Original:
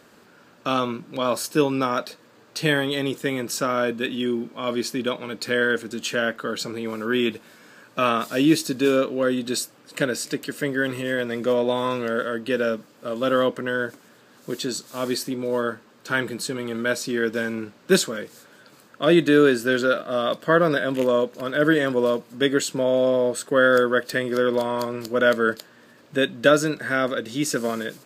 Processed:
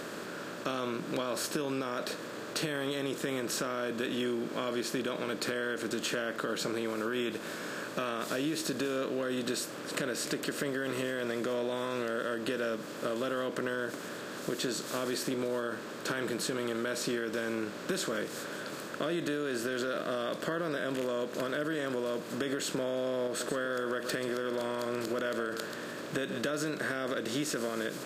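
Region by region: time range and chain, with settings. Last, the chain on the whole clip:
23.27–26.42 s: compression 3:1, threshold -25 dBFS + delay 134 ms -16 dB
whole clip: spectral levelling over time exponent 0.6; peak limiter -10.5 dBFS; compression, threshold -23 dBFS; trim -6.5 dB

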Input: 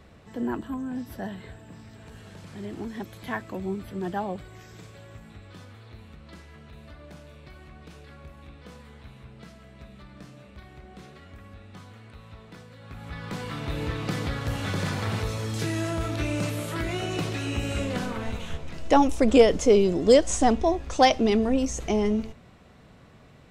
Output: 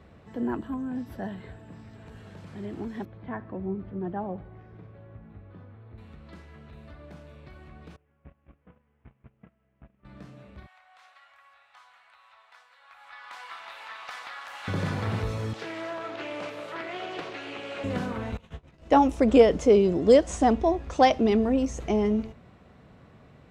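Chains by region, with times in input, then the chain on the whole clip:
3.05–5.98 s: tape spacing loss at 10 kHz 43 dB + feedback delay 74 ms, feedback 59%, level -20.5 dB
7.96–10.05 s: one-bit delta coder 16 kbps, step -55 dBFS + gate -44 dBFS, range -22 dB + transformer saturation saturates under 190 Hz
10.66–14.68 s: inverse Chebyshev high-pass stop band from 400 Hz + loudspeaker Doppler distortion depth 0.17 ms
15.53–17.84 s: high-pass 120 Hz 24 dB/octave + three-band isolator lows -20 dB, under 390 Hz, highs -14 dB, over 5.7 kHz + loudspeaker Doppler distortion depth 0.26 ms
18.37–19.13 s: expander -24 dBFS + doubling 19 ms -11.5 dB
whole clip: high-pass 42 Hz; treble shelf 3.5 kHz -11 dB

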